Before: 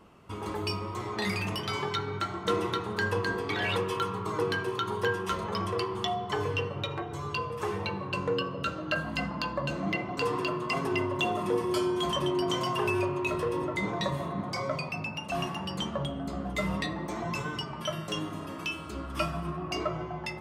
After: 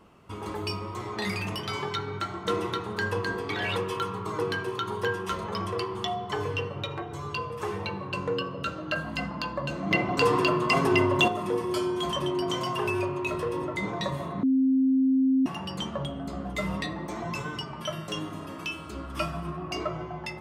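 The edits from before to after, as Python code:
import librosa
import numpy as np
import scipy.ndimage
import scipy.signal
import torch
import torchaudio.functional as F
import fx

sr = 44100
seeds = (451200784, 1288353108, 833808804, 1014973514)

y = fx.edit(x, sr, fx.clip_gain(start_s=9.91, length_s=1.37, db=7.0),
    fx.bleep(start_s=14.43, length_s=1.03, hz=264.0, db=-19.0), tone=tone)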